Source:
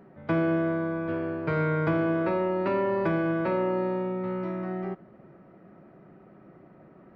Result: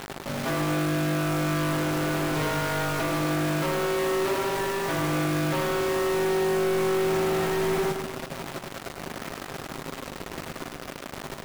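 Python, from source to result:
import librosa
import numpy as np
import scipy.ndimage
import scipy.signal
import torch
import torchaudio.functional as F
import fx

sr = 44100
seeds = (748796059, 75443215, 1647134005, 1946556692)

p1 = fx.highpass(x, sr, hz=50.0, slope=6)
p2 = fx.low_shelf(p1, sr, hz=87.0, db=-7.0)
p3 = fx.hum_notches(p2, sr, base_hz=50, count=7)
p4 = fx.over_compress(p3, sr, threshold_db=-33.0, ratio=-0.5)
p5 = p3 + (p4 * librosa.db_to_amplitude(2.5))
p6 = fx.stretch_grains(p5, sr, factor=1.6, grain_ms=40.0)
p7 = fx.quant_companded(p6, sr, bits=2)
p8 = p7 + fx.echo_feedback(p7, sr, ms=105, feedback_pct=53, wet_db=-7.0, dry=0)
y = p8 * librosa.db_to_amplitude(-1.5)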